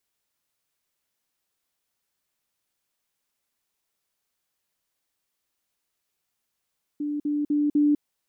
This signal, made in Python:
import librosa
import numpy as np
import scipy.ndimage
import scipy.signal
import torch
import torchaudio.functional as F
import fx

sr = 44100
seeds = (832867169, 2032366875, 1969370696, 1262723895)

y = fx.level_ladder(sr, hz=294.0, from_db=-25.5, step_db=3.0, steps=4, dwell_s=0.2, gap_s=0.05)